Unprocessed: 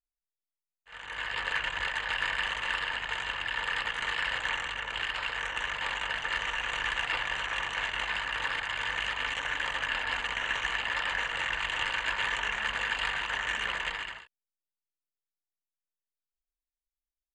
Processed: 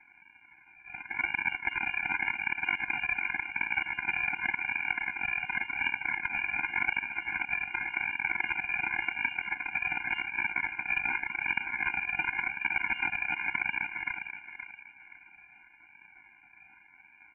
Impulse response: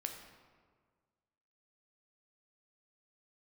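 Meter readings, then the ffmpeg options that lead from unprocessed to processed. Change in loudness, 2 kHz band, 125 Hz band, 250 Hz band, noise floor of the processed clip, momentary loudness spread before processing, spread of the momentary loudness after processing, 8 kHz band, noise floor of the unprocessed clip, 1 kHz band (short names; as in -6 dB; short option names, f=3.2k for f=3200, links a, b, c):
+0.5 dB, +1.0 dB, -3.0 dB, +4.5 dB, -59 dBFS, 3 LU, 4 LU, under -35 dB, under -85 dBFS, -3.5 dB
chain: -filter_complex "[0:a]aeval=exprs='val(0)+0.5*0.015*sgn(val(0))':c=same,highpass=f=45:p=1,highshelf=f=2k:g=-7,acrossover=split=180|1600[a][b][c];[a]acompressor=threshold=-56dB:ratio=4[d];[b]acompressor=threshold=-39dB:ratio=4[e];[c]acompressor=threshold=-48dB:ratio=4[f];[d][e][f]amix=inputs=3:normalize=0,aeval=exprs='val(0)+0.000708*(sin(2*PI*60*n/s)+sin(2*PI*2*60*n/s)/2+sin(2*PI*3*60*n/s)/3+sin(2*PI*4*60*n/s)/4+sin(2*PI*5*60*n/s)/5)':c=same,aeval=exprs='0.0531*(cos(1*acos(clip(val(0)/0.0531,-1,1)))-cos(1*PI/2))+0.00944*(cos(7*acos(clip(val(0)/0.0531,-1,1)))-cos(7*PI/2))':c=same,aresample=16000,acrusher=samples=36:mix=1:aa=0.000001:lfo=1:lforange=21.6:lforate=0.89,aresample=44100,asplit=2[g][h];[h]adelay=523,lowpass=f=2k:p=1,volume=-9dB,asplit=2[i][j];[j]adelay=523,lowpass=f=2k:p=1,volume=0.36,asplit=2[k][l];[l]adelay=523,lowpass=f=2k:p=1,volume=0.36,asplit=2[m][n];[n]adelay=523,lowpass=f=2k:p=1,volume=0.36[o];[g][i][k][m][o]amix=inputs=5:normalize=0,lowpass=f=2.4k:t=q:w=0.5098,lowpass=f=2.4k:t=q:w=0.6013,lowpass=f=2.4k:t=q:w=0.9,lowpass=f=2.4k:t=q:w=2.563,afreqshift=-2800,alimiter=level_in=33dB:limit=-1dB:release=50:level=0:latency=1,afftfilt=real='re*eq(mod(floor(b*sr/1024/350),2),0)':imag='im*eq(mod(floor(b*sr/1024/350),2),0)':win_size=1024:overlap=0.75,volume=-8dB"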